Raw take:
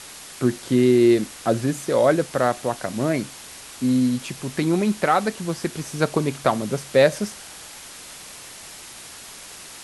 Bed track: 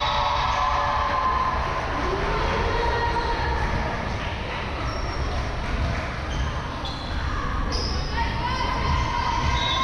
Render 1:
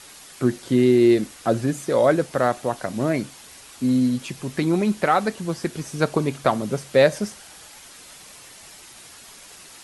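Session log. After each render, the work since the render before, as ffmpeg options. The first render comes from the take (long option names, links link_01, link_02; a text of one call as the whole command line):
ffmpeg -i in.wav -af "afftdn=noise_reduction=6:noise_floor=-41" out.wav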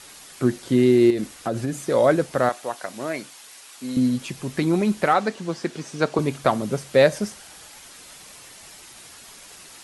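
ffmpeg -i in.wav -filter_complex "[0:a]asettb=1/sr,asplit=3[link_01][link_02][link_03];[link_01]atrim=end=1.104[link_04];[link_02]atrim=start=1.1:end=1.87,asetpts=PTS-STARTPTS,afade=type=in:duration=0.004:curve=qsin,afade=type=out:start_time=0.766:duration=0.004:curve=qsin,acompressor=threshold=-20dB:ratio=6:attack=3.2:release=140:knee=1:detection=peak[link_05];[link_03]atrim=start=1.866[link_06];[link_04][link_05]acrossfade=duration=0.004:curve1=hsin:curve2=qsin[link_07];[link_07][link_06]acrossfade=duration=0.004:curve1=qsin:curve2=hsin,asettb=1/sr,asplit=3[link_08][link_09][link_10];[link_08]atrim=end=2.494[link_11];[link_09]atrim=start=2.49:end=3.97,asetpts=PTS-STARTPTS,afade=type=in:duration=0.004:curve=qsin,afade=type=out:start_time=1.476:duration=0.004:curve=qsin,highpass=frequency=800:poles=1[link_12];[link_10]atrim=start=3.966[link_13];[link_11][link_12]acrossfade=duration=0.004:curve1=hsin:curve2=qsin[link_14];[link_14][link_13]acrossfade=duration=0.004:curve1=qsin:curve2=hsin,asettb=1/sr,asplit=3[link_15][link_16][link_17];[link_15]atrim=end=5.134[link_18];[link_16]atrim=start=5.13:end=6.19,asetpts=PTS-STARTPTS,afade=type=in:duration=0.004:curve=qsin,afade=type=out:start_time=1.056:duration=0.004:curve=qsin,highpass=180,lowpass=7200[link_19];[link_17]atrim=start=6.186[link_20];[link_18][link_19]acrossfade=duration=0.004:curve1=hsin:curve2=qsin[link_21];[link_21][link_20]acrossfade=duration=0.004:curve1=qsin:curve2=hsin" out.wav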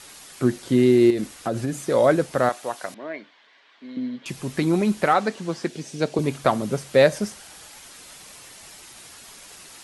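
ffmpeg -i in.wav -filter_complex "[0:a]asettb=1/sr,asplit=3[link_01][link_02][link_03];[link_01]atrim=end=2.944[link_04];[link_02]atrim=start=2.94:end=4.26,asetpts=PTS-STARTPTS,afade=type=in:duration=0.004:curve=qsin,afade=type=out:start_time=1.316:duration=0.004:curve=qsin,highpass=frequency=230:width=0.5412,highpass=frequency=230:width=1.3066,equalizer=frequency=250:width_type=q:width=4:gain=-6,equalizer=frequency=360:width_type=q:width=4:gain=-7,equalizer=frequency=510:width_type=q:width=4:gain=-6,equalizer=frequency=800:width_type=q:width=4:gain=-8,equalizer=frequency=1300:width_type=q:width=4:gain=-9,equalizer=frequency=2600:width_type=q:width=4:gain=-9,lowpass=frequency=3000:width=0.5412,lowpass=frequency=3000:width=1.3066[link_05];[link_03]atrim=start=4.256[link_06];[link_04][link_05]acrossfade=duration=0.004:curve1=hsin:curve2=qsin[link_07];[link_07][link_06]acrossfade=duration=0.004:curve1=qsin:curve2=hsin,asettb=1/sr,asplit=3[link_08][link_09][link_10];[link_08]atrim=end=5.684[link_11];[link_09]atrim=start=5.68:end=6.24,asetpts=PTS-STARTPTS,afade=type=in:duration=0.004:curve=qsin,afade=type=out:start_time=0.556:duration=0.004:curve=qsin,equalizer=frequency=1200:width=1.4:gain=-10.5[link_12];[link_10]atrim=start=6.236[link_13];[link_11][link_12]acrossfade=duration=0.004:curve1=hsin:curve2=qsin[link_14];[link_14][link_13]acrossfade=duration=0.004:curve1=qsin:curve2=hsin" out.wav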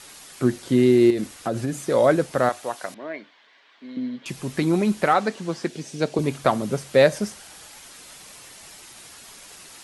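ffmpeg -i in.wav -af "bandreject=frequency=50:width_type=h:width=6,bandreject=frequency=100:width_type=h:width=6" out.wav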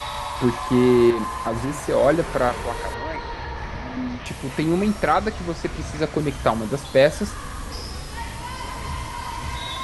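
ffmpeg -i in.wav -i bed.wav -filter_complex "[1:a]volume=-7dB[link_01];[0:a][link_01]amix=inputs=2:normalize=0" out.wav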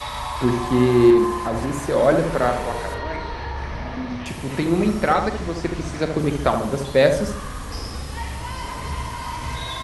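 ffmpeg -i in.wav -filter_complex "[0:a]asplit=2[link_01][link_02];[link_02]adelay=42,volume=-13dB[link_03];[link_01][link_03]amix=inputs=2:normalize=0,asplit=2[link_04][link_05];[link_05]adelay=73,lowpass=frequency=1100:poles=1,volume=-5dB,asplit=2[link_06][link_07];[link_07]adelay=73,lowpass=frequency=1100:poles=1,volume=0.53,asplit=2[link_08][link_09];[link_09]adelay=73,lowpass=frequency=1100:poles=1,volume=0.53,asplit=2[link_10][link_11];[link_11]adelay=73,lowpass=frequency=1100:poles=1,volume=0.53,asplit=2[link_12][link_13];[link_13]adelay=73,lowpass=frequency=1100:poles=1,volume=0.53,asplit=2[link_14][link_15];[link_15]adelay=73,lowpass=frequency=1100:poles=1,volume=0.53,asplit=2[link_16][link_17];[link_17]adelay=73,lowpass=frequency=1100:poles=1,volume=0.53[link_18];[link_04][link_06][link_08][link_10][link_12][link_14][link_16][link_18]amix=inputs=8:normalize=0" out.wav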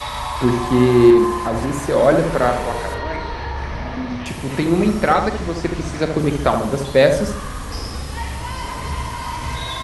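ffmpeg -i in.wav -af "volume=3dB,alimiter=limit=-1dB:level=0:latency=1" out.wav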